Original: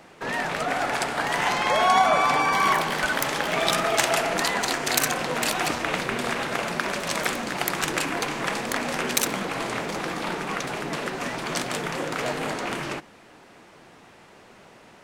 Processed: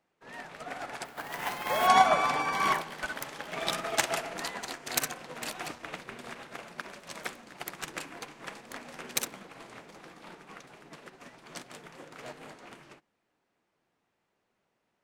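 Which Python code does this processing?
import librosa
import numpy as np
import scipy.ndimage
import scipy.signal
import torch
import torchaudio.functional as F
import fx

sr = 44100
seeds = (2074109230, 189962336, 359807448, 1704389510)

y = fx.sample_hold(x, sr, seeds[0], rate_hz=15000.0, jitter_pct=20, at=(1.04, 1.86), fade=0.02)
y = fx.upward_expand(y, sr, threshold_db=-35.0, expansion=2.5)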